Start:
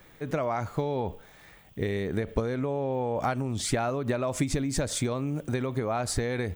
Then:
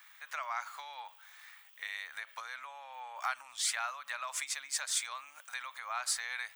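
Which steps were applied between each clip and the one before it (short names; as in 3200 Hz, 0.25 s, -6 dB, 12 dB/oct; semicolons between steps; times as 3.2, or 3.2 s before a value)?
inverse Chebyshev high-pass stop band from 410 Hz, stop band 50 dB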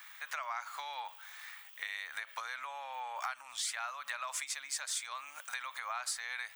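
compressor 3:1, threshold -43 dBFS, peak gain reduction 11.5 dB; gain +5.5 dB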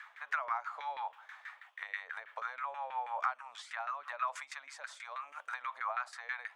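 LFO band-pass saw down 6.2 Hz 400–1800 Hz; gain +8 dB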